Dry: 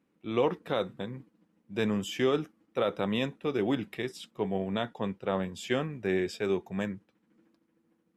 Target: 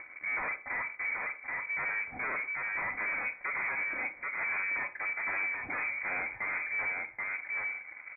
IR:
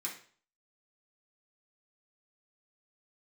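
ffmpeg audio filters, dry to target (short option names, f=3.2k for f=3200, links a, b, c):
-filter_complex "[0:a]highpass=f=67:p=1,aecho=1:1:4.1:0.5,acompressor=mode=upward:threshold=-29dB:ratio=2.5,aeval=exprs='0.0398*(abs(mod(val(0)/0.0398+3,4)-2)-1)':c=same,asplit=2[a][b];[b]adelay=781,lowpass=f=1.9k:p=1,volume=-4dB,asplit=2[c][d];[d]adelay=781,lowpass=f=1.9k:p=1,volume=0.17,asplit=2[e][f];[f]adelay=781,lowpass=f=1.9k:p=1,volume=0.17[g];[a][c][e][g]amix=inputs=4:normalize=0,asoftclip=type=tanh:threshold=-33.5dB,aeval=exprs='0.0211*(cos(1*acos(clip(val(0)/0.0211,-1,1)))-cos(1*PI/2))+0.00211*(cos(7*acos(clip(val(0)/0.0211,-1,1)))-cos(7*PI/2))':c=same,asplit=2[h][i];[1:a]atrim=start_sample=2205,adelay=38[j];[i][j]afir=irnorm=-1:irlink=0,volume=-12.5dB[k];[h][k]amix=inputs=2:normalize=0,lowpass=f=2.1k:t=q:w=0.5098,lowpass=f=2.1k:t=q:w=0.6013,lowpass=f=2.1k:t=q:w=0.9,lowpass=f=2.1k:t=q:w=2.563,afreqshift=-2500,volume=3.5dB"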